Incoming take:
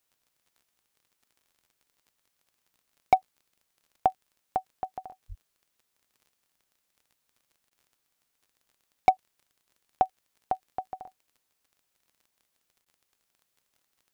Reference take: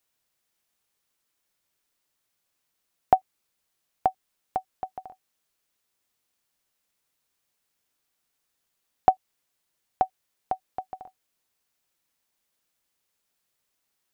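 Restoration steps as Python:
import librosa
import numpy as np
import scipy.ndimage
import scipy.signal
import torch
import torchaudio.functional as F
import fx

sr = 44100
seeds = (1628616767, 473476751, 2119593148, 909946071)

y = fx.fix_declip(x, sr, threshold_db=-10.5)
y = fx.fix_declick_ar(y, sr, threshold=6.5)
y = fx.fix_deplosive(y, sr, at_s=(5.28,))
y = fx.fix_interpolate(y, sr, at_s=(7.7, 12.85), length_ms=10.0)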